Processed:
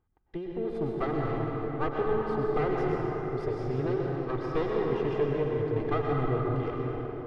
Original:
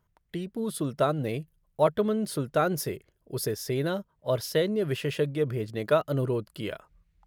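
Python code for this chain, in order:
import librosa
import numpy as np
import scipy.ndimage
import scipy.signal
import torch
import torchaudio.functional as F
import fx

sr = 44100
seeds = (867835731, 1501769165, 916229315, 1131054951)

y = fx.lower_of_two(x, sr, delay_ms=2.5)
y = fx.spacing_loss(y, sr, db_at_10k=36)
y = fx.rev_plate(y, sr, seeds[0], rt60_s=4.4, hf_ratio=0.5, predelay_ms=90, drr_db=-2.5)
y = y * librosa.db_to_amplitude(-1.5)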